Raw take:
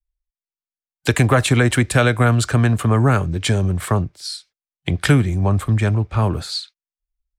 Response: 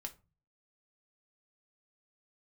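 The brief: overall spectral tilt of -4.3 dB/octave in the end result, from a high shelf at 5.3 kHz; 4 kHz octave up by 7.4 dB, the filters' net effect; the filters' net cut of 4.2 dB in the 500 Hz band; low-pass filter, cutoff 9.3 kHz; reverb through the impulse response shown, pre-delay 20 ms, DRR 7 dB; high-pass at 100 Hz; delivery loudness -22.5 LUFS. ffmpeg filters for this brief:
-filter_complex "[0:a]highpass=100,lowpass=9300,equalizer=f=500:t=o:g=-5.5,equalizer=f=4000:t=o:g=7,highshelf=f=5300:g=5,asplit=2[s0][s1];[1:a]atrim=start_sample=2205,adelay=20[s2];[s1][s2]afir=irnorm=-1:irlink=0,volume=0.668[s3];[s0][s3]amix=inputs=2:normalize=0,volume=0.596"

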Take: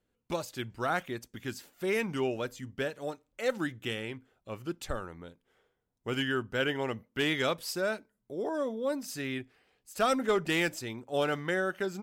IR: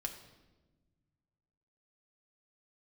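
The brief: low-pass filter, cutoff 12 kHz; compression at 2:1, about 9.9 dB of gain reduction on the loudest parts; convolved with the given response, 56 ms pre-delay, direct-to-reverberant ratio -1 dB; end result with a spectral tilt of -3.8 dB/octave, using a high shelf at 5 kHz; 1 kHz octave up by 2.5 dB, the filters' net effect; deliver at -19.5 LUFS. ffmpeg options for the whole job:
-filter_complex "[0:a]lowpass=12000,equalizer=f=1000:t=o:g=4,highshelf=f=5000:g=-7,acompressor=threshold=0.01:ratio=2,asplit=2[s0][s1];[1:a]atrim=start_sample=2205,adelay=56[s2];[s1][s2]afir=irnorm=-1:irlink=0,volume=1.19[s3];[s0][s3]amix=inputs=2:normalize=0,volume=7.08"

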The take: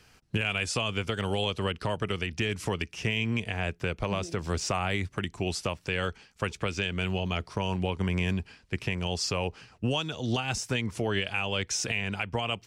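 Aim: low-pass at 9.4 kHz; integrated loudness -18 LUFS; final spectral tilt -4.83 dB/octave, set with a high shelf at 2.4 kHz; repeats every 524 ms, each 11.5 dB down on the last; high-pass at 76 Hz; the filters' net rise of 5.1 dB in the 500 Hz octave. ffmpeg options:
-af "highpass=76,lowpass=9400,equalizer=f=500:t=o:g=6.5,highshelf=f=2400:g=-7.5,aecho=1:1:524|1048|1572:0.266|0.0718|0.0194,volume=3.98"

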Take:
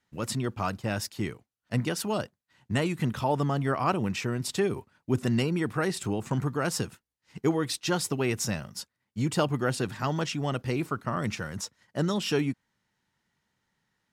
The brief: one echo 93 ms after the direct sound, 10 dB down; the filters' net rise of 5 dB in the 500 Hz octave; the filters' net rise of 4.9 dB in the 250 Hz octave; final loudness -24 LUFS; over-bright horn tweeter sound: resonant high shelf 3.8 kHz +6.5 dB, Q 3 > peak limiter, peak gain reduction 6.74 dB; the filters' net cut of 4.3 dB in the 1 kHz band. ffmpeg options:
-af "equalizer=f=250:t=o:g=5,equalizer=f=500:t=o:g=6.5,equalizer=f=1000:t=o:g=-8,highshelf=f=3800:t=q:w=3:g=6.5,aecho=1:1:93:0.316,volume=1.33,alimiter=limit=0.237:level=0:latency=1"

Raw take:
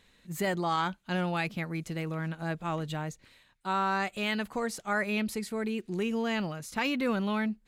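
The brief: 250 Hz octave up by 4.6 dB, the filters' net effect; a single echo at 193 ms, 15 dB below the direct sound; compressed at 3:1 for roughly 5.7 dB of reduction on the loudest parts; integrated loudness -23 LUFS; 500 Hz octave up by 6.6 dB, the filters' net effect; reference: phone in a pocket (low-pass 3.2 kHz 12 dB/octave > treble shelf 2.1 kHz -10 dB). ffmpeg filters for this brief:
-af "equalizer=f=250:t=o:g=4.5,equalizer=f=500:t=o:g=7.5,acompressor=threshold=0.0447:ratio=3,lowpass=3200,highshelf=f=2100:g=-10,aecho=1:1:193:0.178,volume=2.99"

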